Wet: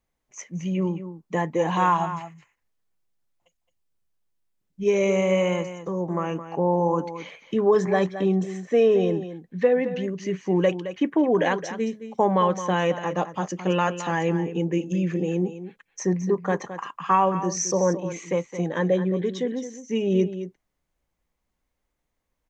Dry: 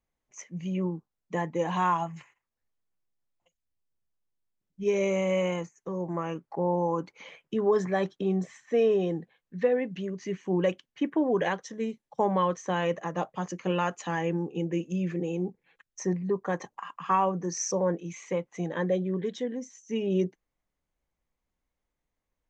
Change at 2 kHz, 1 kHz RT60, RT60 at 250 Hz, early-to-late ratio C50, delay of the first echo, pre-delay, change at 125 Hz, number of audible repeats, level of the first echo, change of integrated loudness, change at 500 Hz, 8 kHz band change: +5.5 dB, no reverb, no reverb, no reverb, 217 ms, no reverb, +5.5 dB, 1, -11.5 dB, +5.5 dB, +5.5 dB, no reading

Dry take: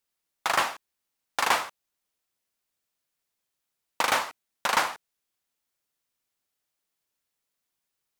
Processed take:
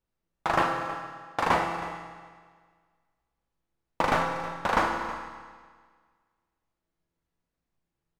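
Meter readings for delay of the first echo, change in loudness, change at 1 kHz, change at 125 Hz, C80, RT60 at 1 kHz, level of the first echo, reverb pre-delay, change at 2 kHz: 319 ms, -1.5 dB, +1.5 dB, +14.5 dB, 5.5 dB, 1.7 s, -15.0 dB, 6 ms, -2.0 dB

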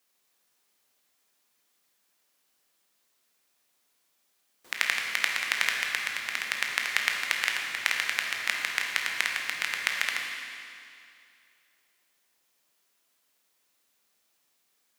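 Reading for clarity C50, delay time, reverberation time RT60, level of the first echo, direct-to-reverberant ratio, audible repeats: 2.0 dB, no echo, 2.5 s, no echo, 0.0 dB, no echo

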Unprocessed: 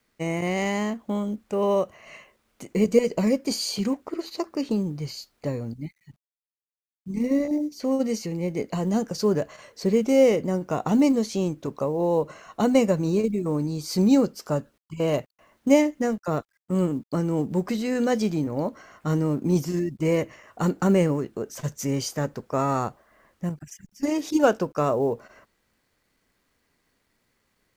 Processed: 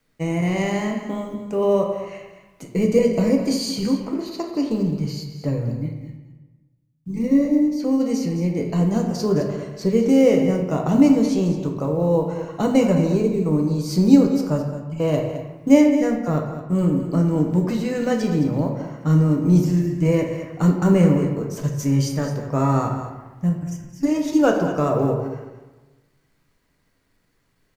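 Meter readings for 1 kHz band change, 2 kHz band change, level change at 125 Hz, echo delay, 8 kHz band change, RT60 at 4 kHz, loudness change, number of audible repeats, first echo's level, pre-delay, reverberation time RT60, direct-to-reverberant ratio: +1.5 dB, +1.5 dB, +8.0 dB, 214 ms, +0.5 dB, 0.70 s, +4.5 dB, 1, -12.0 dB, 3 ms, 1.1 s, 1.5 dB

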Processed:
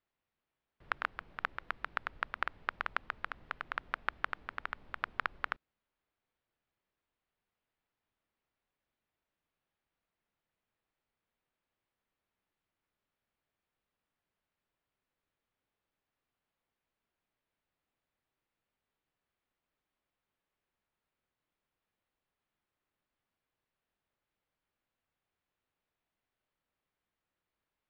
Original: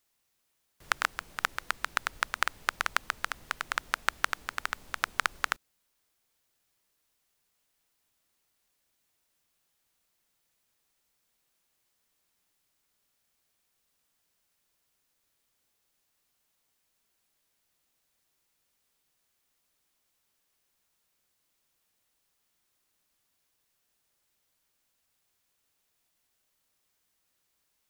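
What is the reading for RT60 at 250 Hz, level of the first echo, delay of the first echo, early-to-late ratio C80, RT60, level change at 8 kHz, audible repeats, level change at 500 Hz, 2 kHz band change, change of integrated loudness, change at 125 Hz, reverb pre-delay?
no reverb, no echo, no echo, no reverb, no reverb, under -30 dB, no echo, -4.5 dB, -7.0 dB, -7.0 dB, -3.5 dB, no reverb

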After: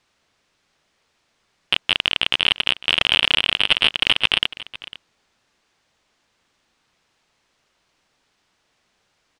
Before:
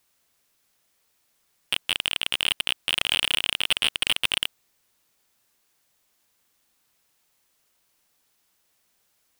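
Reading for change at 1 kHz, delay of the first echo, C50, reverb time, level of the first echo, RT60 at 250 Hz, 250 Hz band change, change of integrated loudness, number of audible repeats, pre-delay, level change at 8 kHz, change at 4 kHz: +8.0 dB, 502 ms, no reverb, no reverb, -18.0 dB, no reverb, +8.5 dB, +6.0 dB, 1, no reverb, -7.0 dB, +6.0 dB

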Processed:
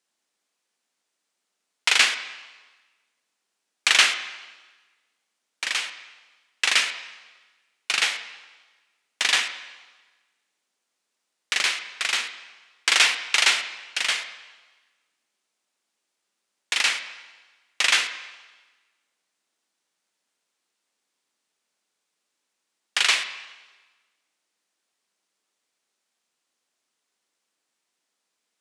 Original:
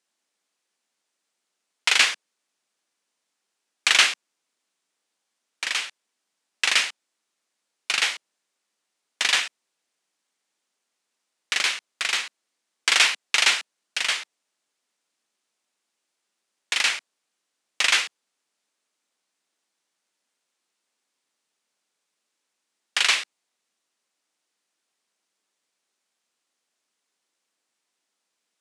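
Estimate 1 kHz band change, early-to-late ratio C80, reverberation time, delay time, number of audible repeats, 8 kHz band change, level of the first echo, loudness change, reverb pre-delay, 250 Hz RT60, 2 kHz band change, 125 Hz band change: +0.5 dB, 12.0 dB, 1.3 s, no echo, no echo, 0.0 dB, no echo, 0.0 dB, 32 ms, 1.2 s, +0.5 dB, no reading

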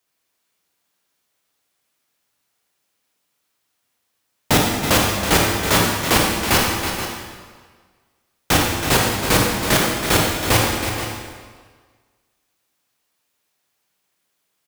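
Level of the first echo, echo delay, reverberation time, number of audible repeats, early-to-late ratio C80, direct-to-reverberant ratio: -8.5 dB, 325 ms, 1.7 s, 2, 1.0 dB, -2.5 dB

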